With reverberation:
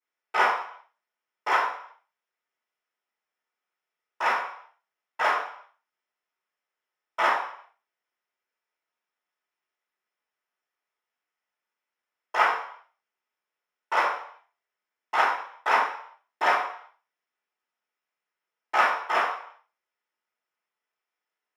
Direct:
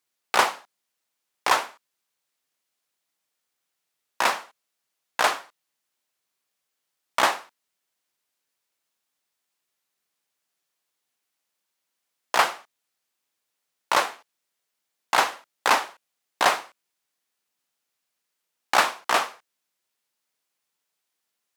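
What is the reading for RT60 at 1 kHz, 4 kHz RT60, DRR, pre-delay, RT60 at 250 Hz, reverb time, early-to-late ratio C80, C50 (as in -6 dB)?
0.60 s, 0.60 s, -14.5 dB, 3 ms, 0.45 s, 0.60 s, 8.5 dB, 4.5 dB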